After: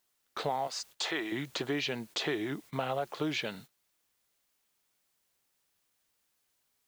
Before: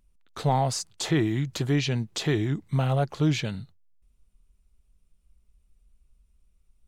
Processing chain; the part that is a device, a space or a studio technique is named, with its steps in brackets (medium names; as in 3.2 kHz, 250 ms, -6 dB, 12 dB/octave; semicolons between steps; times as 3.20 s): 0.67–1.32 s: high-pass 780 Hz 6 dB/octave; baby monitor (band-pass 380–4400 Hz; compression, threshold -31 dBFS, peak gain reduction 10 dB; white noise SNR 23 dB; gate -52 dBFS, range -16 dB); trim +2 dB